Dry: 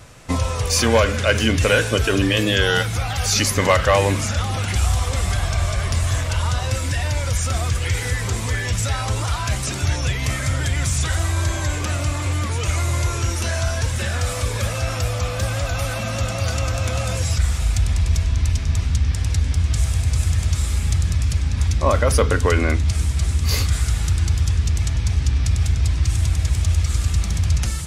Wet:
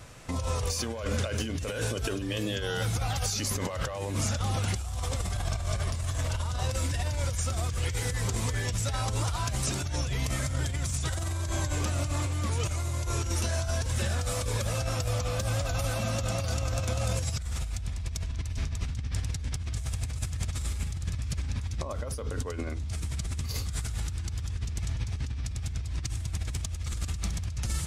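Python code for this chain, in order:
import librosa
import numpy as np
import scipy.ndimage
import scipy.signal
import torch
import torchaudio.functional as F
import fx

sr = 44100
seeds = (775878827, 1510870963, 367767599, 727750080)

y = fx.dynamic_eq(x, sr, hz=2000.0, q=0.96, threshold_db=-36.0, ratio=4.0, max_db=-6)
y = fx.over_compress(y, sr, threshold_db=-23.0, ratio=-1.0)
y = F.gain(torch.from_numpy(y), -7.5).numpy()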